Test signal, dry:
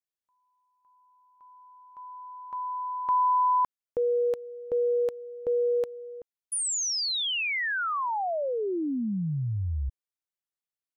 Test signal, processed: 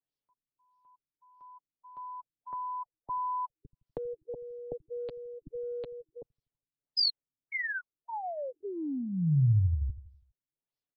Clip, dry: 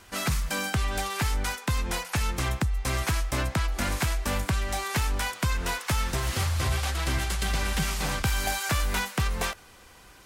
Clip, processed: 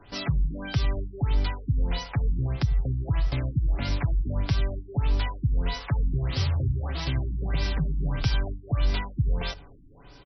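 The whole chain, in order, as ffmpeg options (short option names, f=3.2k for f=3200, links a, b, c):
-filter_complex "[0:a]equalizer=f=1.7k:t=o:w=2.1:g=-11,aecho=1:1:7.1:0.57,acrossover=split=140|1800[a][b][c];[a]aecho=1:1:82|164|246|328|410:0.211|0.108|0.055|0.028|0.0143[d];[b]acompressor=threshold=-44dB:ratio=6:attack=31:release=35:knee=6:detection=rms[e];[d][e][c]amix=inputs=3:normalize=0,afftfilt=real='re*lt(b*sr/1024,330*pow(6000/330,0.5+0.5*sin(2*PI*1.6*pts/sr)))':imag='im*lt(b*sr/1024,330*pow(6000/330,0.5+0.5*sin(2*PI*1.6*pts/sr)))':win_size=1024:overlap=0.75,volume=5.5dB"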